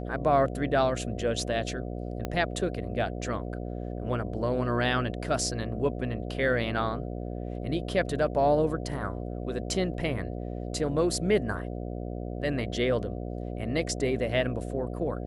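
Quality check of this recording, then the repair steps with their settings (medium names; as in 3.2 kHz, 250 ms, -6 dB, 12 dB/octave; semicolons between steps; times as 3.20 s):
buzz 60 Hz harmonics 12 -35 dBFS
2.25 s: pop -17 dBFS
9.94 s: dropout 2.1 ms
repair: de-click; de-hum 60 Hz, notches 12; interpolate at 9.94 s, 2.1 ms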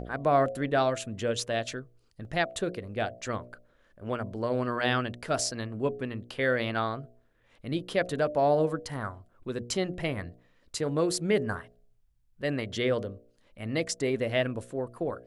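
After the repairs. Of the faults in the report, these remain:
2.25 s: pop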